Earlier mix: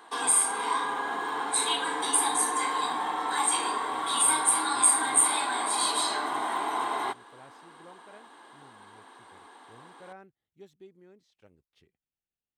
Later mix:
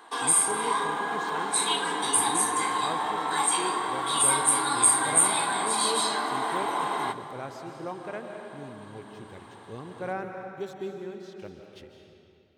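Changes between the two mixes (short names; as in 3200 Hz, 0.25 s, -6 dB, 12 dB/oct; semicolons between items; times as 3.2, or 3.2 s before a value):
speech +11.5 dB; reverb: on, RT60 2.7 s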